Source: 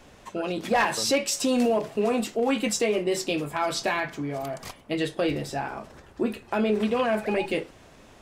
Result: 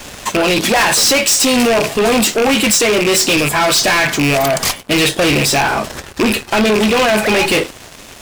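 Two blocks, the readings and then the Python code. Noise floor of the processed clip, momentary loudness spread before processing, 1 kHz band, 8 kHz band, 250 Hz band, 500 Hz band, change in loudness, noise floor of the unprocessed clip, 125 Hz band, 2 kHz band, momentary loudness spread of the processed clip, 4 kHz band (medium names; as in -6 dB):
-36 dBFS, 10 LU, +12.5 dB, +18.5 dB, +11.0 dB, +11.0 dB, +14.0 dB, -52 dBFS, +14.5 dB, +16.5 dB, 6 LU, +18.5 dB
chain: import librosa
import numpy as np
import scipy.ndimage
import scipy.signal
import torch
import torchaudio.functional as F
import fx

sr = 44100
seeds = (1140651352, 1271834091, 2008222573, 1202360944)

p1 = fx.rattle_buzz(x, sr, strikes_db=-36.0, level_db=-24.0)
p2 = fx.high_shelf(p1, sr, hz=2000.0, db=10.5)
p3 = fx.rider(p2, sr, range_db=5, speed_s=0.5)
p4 = p2 + (p3 * 10.0 ** (1.5 / 20.0))
p5 = fx.leveller(p4, sr, passes=3)
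y = 10.0 ** (-10.0 / 20.0) * np.tanh(p5 / 10.0 ** (-10.0 / 20.0))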